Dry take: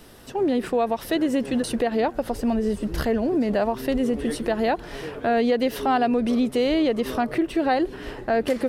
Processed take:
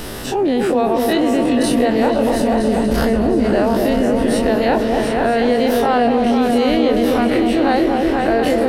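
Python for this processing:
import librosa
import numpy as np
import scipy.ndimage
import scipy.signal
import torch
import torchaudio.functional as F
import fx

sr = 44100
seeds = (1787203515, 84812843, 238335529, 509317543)

y = fx.spec_dilate(x, sr, span_ms=60)
y = fx.echo_opening(y, sr, ms=241, hz=750, octaves=2, feedback_pct=70, wet_db=-3)
y = fx.env_flatten(y, sr, amount_pct=50)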